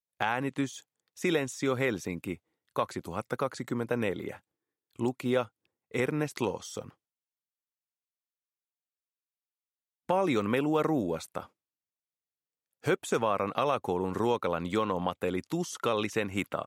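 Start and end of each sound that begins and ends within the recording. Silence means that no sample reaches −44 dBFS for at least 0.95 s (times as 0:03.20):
0:10.09–0:11.45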